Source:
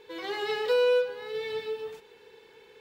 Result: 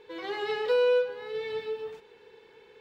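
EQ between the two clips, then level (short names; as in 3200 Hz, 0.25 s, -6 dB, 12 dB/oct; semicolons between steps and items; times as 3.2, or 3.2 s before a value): LPF 3300 Hz 6 dB/oct; 0.0 dB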